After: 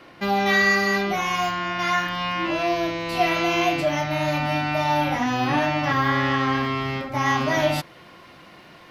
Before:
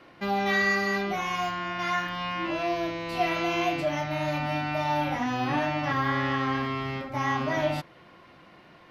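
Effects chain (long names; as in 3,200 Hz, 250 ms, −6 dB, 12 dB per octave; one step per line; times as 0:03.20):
high-shelf EQ 4,100 Hz +4.5 dB, from 0:07.26 +10 dB
level +5 dB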